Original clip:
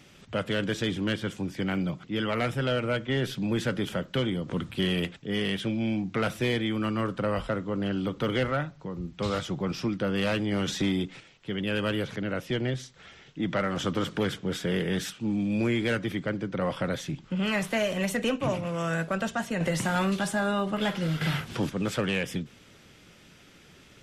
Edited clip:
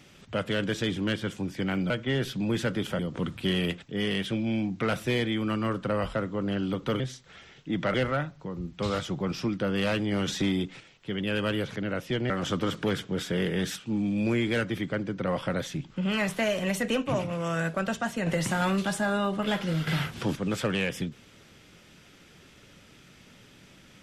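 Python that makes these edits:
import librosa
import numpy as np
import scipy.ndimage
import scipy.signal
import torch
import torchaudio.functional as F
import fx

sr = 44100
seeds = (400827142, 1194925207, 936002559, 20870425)

y = fx.edit(x, sr, fx.cut(start_s=1.9, length_s=1.02),
    fx.cut(start_s=4.01, length_s=0.32),
    fx.move(start_s=12.7, length_s=0.94, to_s=8.34), tone=tone)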